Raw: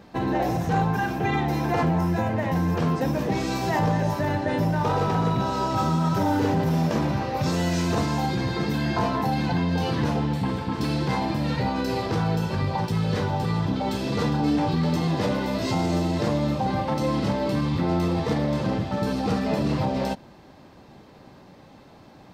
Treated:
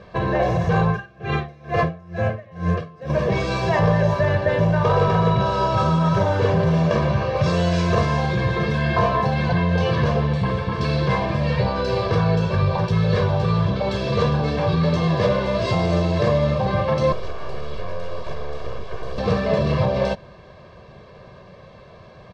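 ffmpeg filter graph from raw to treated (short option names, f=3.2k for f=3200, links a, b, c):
-filter_complex "[0:a]asettb=1/sr,asplit=3[a][b][c];[a]atrim=end=0.894[d];[b]atrim=start=0.89:end=3.1,asetpts=PTS-STARTPTS,afade=t=in:d=0.004:c=qsin,afade=t=out:st=2.206:d=0.004:c=qsin,asuperstop=centerf=930:order=8:qfactor=5,aeval=exprs='val(0)*pow(10,-26*(0.5-0.5*cos(2*PI*2.2*n/s))/20)':c=same[e];[c]atrim=start=3.096[f];[d][e]acrossfade=d=0.004:c1=hsin:c2=qsin[g];[g][f]acrossfade=d=0.004:c1=qsin:c2=hsin,asettb=1/sr,asplit=3[h][i][j];[h]atrim=end=17.124[k];[i]atrim=start=17.12:end=19.18,asetpts=PTS-STARTPTS,afade=t=in:d=0.004:c=qsin,afade=t=out:st=2.056:d=0.004:c=qsin,acrossover=split=600|5900[l][m][n];[l]acompressor=threshold=-32dB:ratio=4[o];[m]acompressor=threshold=-44dB:ratio=4[p];[n]acompressor=threshold=-54dB:ratio=4[q];[o][p][q]amix=inputs=3:normalize=0,aeval=exprs='abs(val(0))':c=same,equalizer=f=1.9k:w=7.9:g=-4.5[r];[j]atrim=start=19.176[s];[k][r]acrossfade=d=0.004:c1=hsin:c2=qsin[t];[t][s]acrossfade=d=0.004:c1=qsin:c2=hsin,lowpass=4.1k,aecho=1:1:1.8:0.86,volume=3.5dB"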